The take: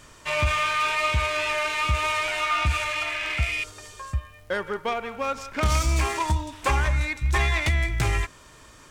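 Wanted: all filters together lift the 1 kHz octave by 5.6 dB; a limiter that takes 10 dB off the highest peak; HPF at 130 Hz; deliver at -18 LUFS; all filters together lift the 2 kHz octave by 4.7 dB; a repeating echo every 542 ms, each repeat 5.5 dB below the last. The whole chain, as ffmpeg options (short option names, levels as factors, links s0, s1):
-af "highpass=130,equalizer=f=1000:t=o:g=5.5,equalizer=f=2000:t=o:g=4.5,alimiter=limit=0.15:level=0:latency=1,aecho=1:1:542|1084|1626|2168|2710|3252|3794:0.531|0.281|0.149|0.079|0.0419|0.0222|0.0118,volume=2"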